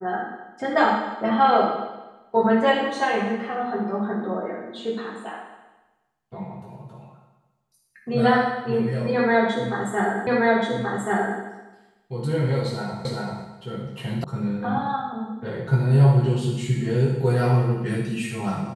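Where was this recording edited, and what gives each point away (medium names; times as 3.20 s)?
10.27 s: repeat of the last 1.13 s
13.05 s: repeat of the last 0.39 s
14.24 s: sound stops dead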